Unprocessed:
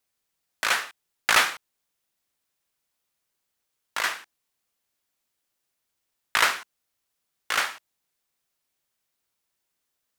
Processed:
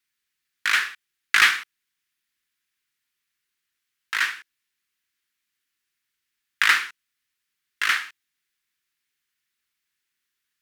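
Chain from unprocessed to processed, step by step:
drawn EQ curve 420 Hz 0 dB, 590 Hz −16 dB, 1,800 Hz +12 dB, 8,000 Hz +3 dB
wrong playback speed 25 fps video run at 24 fps
level −5.5 dB

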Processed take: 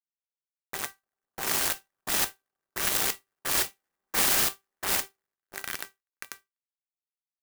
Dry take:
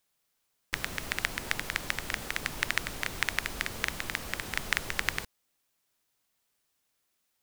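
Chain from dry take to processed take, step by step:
0:02.95–0:05.11: feedback delay that plays each chunk backwards 118 ms, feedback 79%, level −7.5 dB
noise gate with hold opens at −30 dBFS
echo with a time of its own for lows and highs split 1,300 Hz, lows 98 ms, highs 246 ms, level −3 dB
automatic gain control gain up to 13.5 dB
fuzz pedal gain 40 dB, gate −31 dBFS
dynamic equaliser 2,100 Hz, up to −6 dB, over −36 dBFS, Q 3.1
gate pattern "xx..x..." 87 BPM −60 dB
tuned comb filter 390 Hz, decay 0.18 s, harmonics all, mix 70%
low-pass that shuts in the quiet parts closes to 1,200 Hz, open at −25 dBFS
brickwall limiter −28.5 dBFS, peak gain reduction 11 dB
RIAA equalisation recording
converter with an unsteady clock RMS 0.076 ms
level +7.5 dB

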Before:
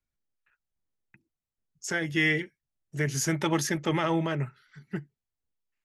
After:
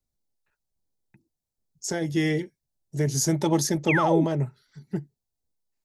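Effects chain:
flat-topped bell 1,900 Hz −12.5 dB
sound drawn into the spectrogram fall, 0:03.88–0:04.25, 240–2,900 Hz −29 dBFS
level +4.5 dB

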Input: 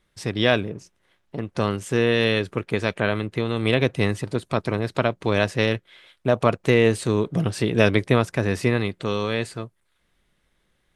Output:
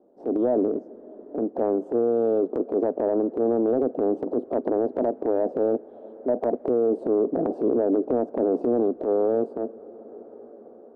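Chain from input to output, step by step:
elliptic band-pass filter 250–730 Hz, stop band 50 dB
downward compressor 3 to 1, threshold −22 dBFS, peak gain reduction 6.5 dB
transient designer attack −10 dB, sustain +7 dB
brickwall limiter −21 dBFS, peak gain reduction 6 dB
on a send at −21.5 dB: convolution reverb RT60 5.4 s, pre-delay 29 ms
on the sum: multiband upward and downward compressor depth 40%
level +7.5 dB

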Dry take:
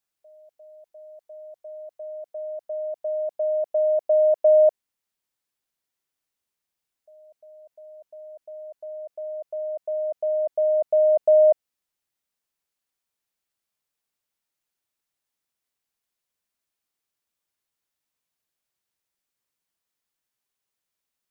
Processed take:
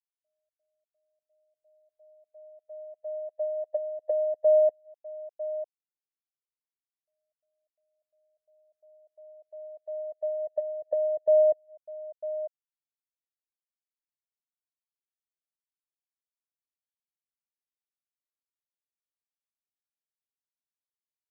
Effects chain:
single-tap delay 950 ms −10.5 dB
treble cut that deepens with the level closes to 480 Hz, closed at −19.5 dBFS
expander for the loud parts 2.5 to 1, over −43 dBFS
level +1 dB

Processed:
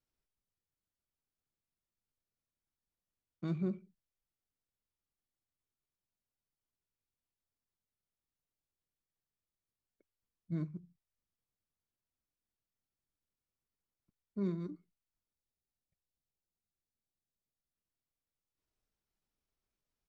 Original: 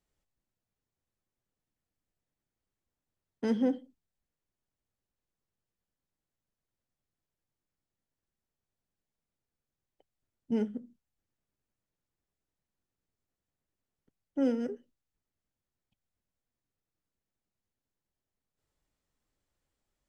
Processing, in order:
gain on a spectral selection 0:15.34–0:17.72, 1,200–4,800 Hz −10 dB
pitch shifter −5.5 semitones
level −7 dB

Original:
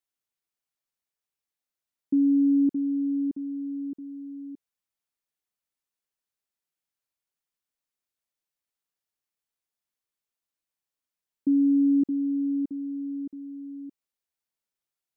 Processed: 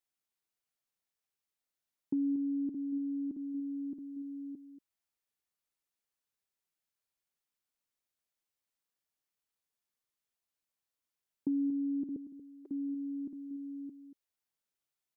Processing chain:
0:12.16–0:12.68: elliptic high-pass filter 390 Hz, stop band 50 dB
downward compressor 2.5 to 1, threshold −33 dBFS, peak gain reduction 9 dB
single-tap delay 234 ms −12.5 dB
level −1.5 dB

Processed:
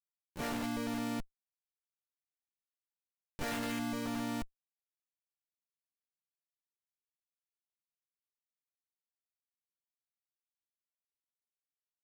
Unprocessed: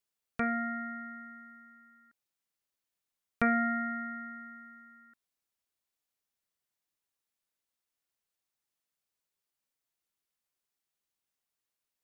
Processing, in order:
ceiling on every frequency bin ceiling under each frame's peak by 17 dB
reverb whose tail is shaped and stops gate 260 ms flat, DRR −3.5 dB
comparator with hysteresis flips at −31 dBFS
pitch-shifted copies added −12 semitones −11 dB, +4 semitones −3 dB
level −2.5 dB

